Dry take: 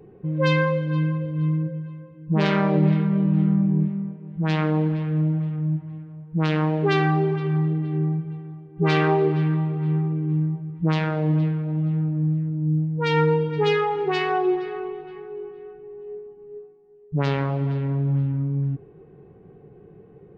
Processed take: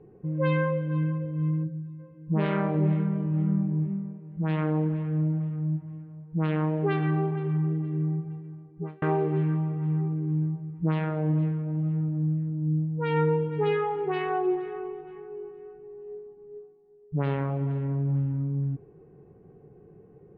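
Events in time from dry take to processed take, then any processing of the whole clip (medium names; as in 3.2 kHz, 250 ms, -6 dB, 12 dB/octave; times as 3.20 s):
1.64–1.99 s: time-frequency box 420–3400 Hz -11 dB
8.59–9.02 s: studio fade out
whole clip: low-pass 3.4 kHz 24 dB/octave; treble shelf 2.6 kHz -11.5 dB; de-hum 194.7 Hz, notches 32; trim -4 dB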